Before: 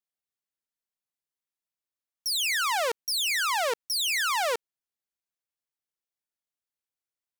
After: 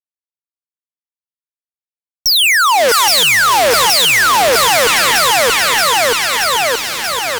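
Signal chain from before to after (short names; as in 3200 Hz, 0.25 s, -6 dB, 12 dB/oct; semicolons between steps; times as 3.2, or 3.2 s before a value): echo with dull and thin repeats by turns 0.314 s, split 1700 Hz, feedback 76%, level -7 dB; fuzz box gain 51 dB, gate -53 dBFS; gain +3 dB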